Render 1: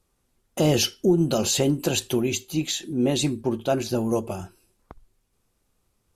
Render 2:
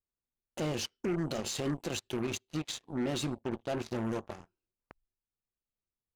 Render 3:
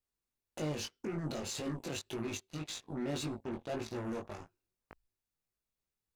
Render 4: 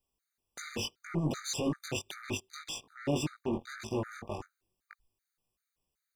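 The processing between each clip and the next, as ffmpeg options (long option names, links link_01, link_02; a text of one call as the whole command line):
ffmpeg -i in.wav -af "alimiter=limit=-17dB:level=0:latency=1:release=71,aeval=exprs='0.141*(cos(1*acos(clip(val(0)/0.141,-1,1)))-cos(1*PI/2))+0.0224*(cos(7*acos(clip(val(0)/0.141,-1,1)))-cos(7*PI/2))':channel_layout=same,adynamicsmooth=sensitivity=5.5:basefreq=4300,volume=-8dB" out.wav
ffmpeg -i in.wav -af "bandreject=frequency=3100:width=17,alimiter=level_in=9dB:limit=-24dB:level=0:latency=1:release=18,volume=-9dB,flanger=delay=18.5:depth=3:speed=1.8,volume=5.5dB" out.wav
ffmpeg -i in.wav -af "afftfilt=real='re*gt(sin(2*PI*2.6*pts/sr)*(1-2*mod(floor(b*sr/1024/1200),2)),0)':imag='im*gt(sin(2*PI*2.6*pts/sr)*(1-2*mod(floor(b*sr/1024/1200),2)),0)':win_size=1024:overlap=0.75,volume=7.5dB" out.wav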